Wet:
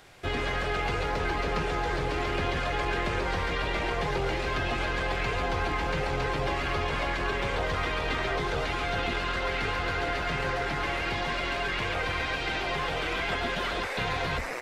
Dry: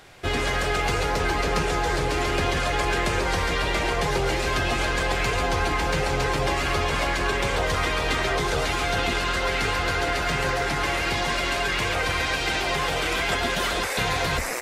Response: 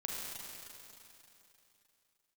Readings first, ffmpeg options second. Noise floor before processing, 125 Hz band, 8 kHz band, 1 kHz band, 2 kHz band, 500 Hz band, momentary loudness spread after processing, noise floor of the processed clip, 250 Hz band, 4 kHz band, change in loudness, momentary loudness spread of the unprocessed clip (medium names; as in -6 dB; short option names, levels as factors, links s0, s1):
-26 dBFS, -5.0 dB, -14.0 dB, -5.0 dB, -5.0 dB, -5.0 dB, 1 LU, -32 dBFS, -5.0 dB, -7.0 dB, -5.5 dB, 1 LU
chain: -filter_complex "[0:a]aeval=exprs='0.266*(cos(1*acos(clip(val(0)/0.266,-1,1)))-cos(1*PI/2))+0.0133*(cos(4*acos(clip(val(0)/0.266,-1,1)))-cos(4*PI/2))+0.0075*(cos(5*acos(clip(val(0)/0.266,-1,1)))-cos(5*PI/2))':c=same,acrossover=split=4400[s0][s1];[s1]acompressor=threshold=0.00355:ratio=4:attack=1:release=60[s2];[s0][s2]amix=inputs=2:normalize=0,volume=0.531"